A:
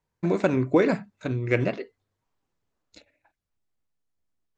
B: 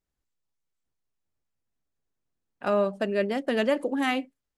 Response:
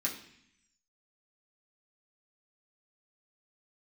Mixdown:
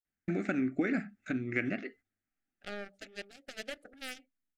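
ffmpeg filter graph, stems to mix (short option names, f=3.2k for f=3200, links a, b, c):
-filter_complex "[0:a]equalizer=f=125:t=o:w=1:g=-10,equalizer=f=250:t=o:w=1:g=10,equalizer=f=500:t=o:w=1:g=-12,equalizer=f=1k:t=o:w=1:g=7,equalizer=f=2k:t=o:w=1:g=7,equalizer=f=4k:t=o:w=1:g=-7,agate=range=-10dB:threshold=-51dB:ratio=16:detection=peak,adelay=50,volume=0dB[a];[1:a]lowshelf=f=480:g=-11,aeval=exprs='0.211*(cos(1*acos(clip(val(0)/0.211,-1,1)))-cos(1*PI/2))+0.0075*(cos(5*acos(clip(val(0)/0.211,-1,1)))-cos(5*PI/2))+0.0473*(cos(7*acos(clip(val(0)/0.211,-1,1)))-cos(7*PI/2))':c=same,volume=-9.5dB[b];[a][b]amix=inputs=2:normalize=0,asuperstop=centerf=1000:order=4:qfactor=1.8,acompressor=threshold=-36dB:ratio=2"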